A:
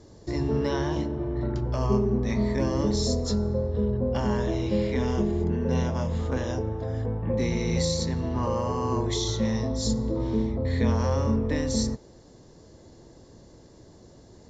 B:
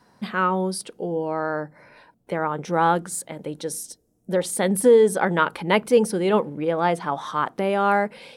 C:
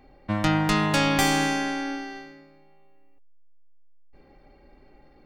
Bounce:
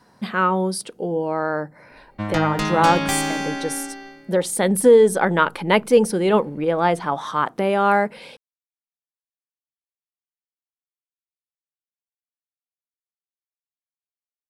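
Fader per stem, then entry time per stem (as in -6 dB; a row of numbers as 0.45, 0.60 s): off, +2.5 dB, -1.0 dB; off, 0.00 s, 1.90 s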